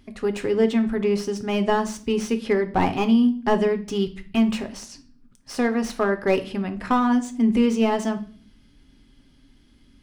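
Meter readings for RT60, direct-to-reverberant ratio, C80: 0.45 s, 7.0 dB, 19.5 dB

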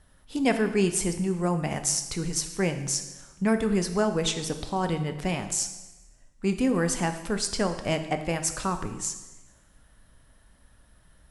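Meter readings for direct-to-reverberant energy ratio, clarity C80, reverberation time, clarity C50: 7.0 dB, 12.0 dB, 1.1 s, 10.0 dB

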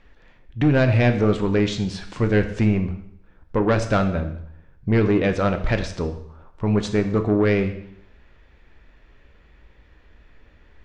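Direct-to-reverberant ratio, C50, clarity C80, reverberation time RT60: 6.5 dB, 10.5 dB, 13.0 dB, 0.70 s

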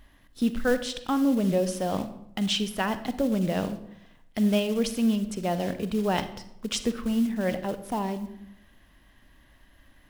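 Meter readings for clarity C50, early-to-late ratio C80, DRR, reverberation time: 12.5 dB, 15.0 dB, 11.0 dB, 0.80 s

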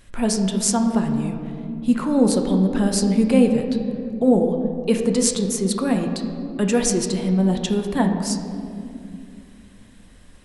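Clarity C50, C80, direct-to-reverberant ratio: 6.0 dB, 7.5 dB, 3.5 dB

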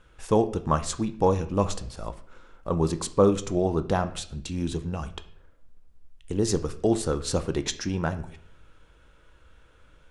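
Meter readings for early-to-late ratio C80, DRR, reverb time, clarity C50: 17.5 dB, 9.5 dB, 0.60 s, 14.5 dB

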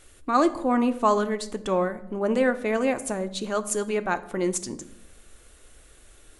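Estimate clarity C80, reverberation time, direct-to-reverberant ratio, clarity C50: 19.0 dB, 0.80 s, 10.0 dB, 16.0 dB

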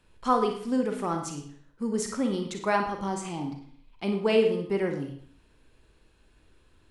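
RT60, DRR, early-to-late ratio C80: 0.55 s, 4.0 dB, 9.5 dB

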